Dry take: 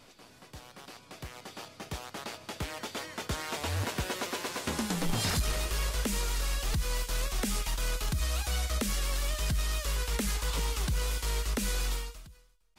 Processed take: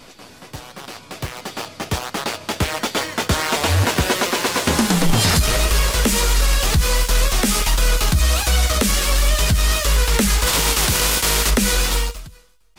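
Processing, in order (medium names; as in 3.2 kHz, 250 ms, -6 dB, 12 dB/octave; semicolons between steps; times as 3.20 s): 10.46–11.49 s: spectral contrast reduction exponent 0.61; flange 1.4 Hz, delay 3.6 ms, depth 9.8 ms, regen -43%; in parallel at -6 dB: small samples zeroed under -42.5 dBFS; on the sum: loudness maximiser +24 dB; trim -7 dB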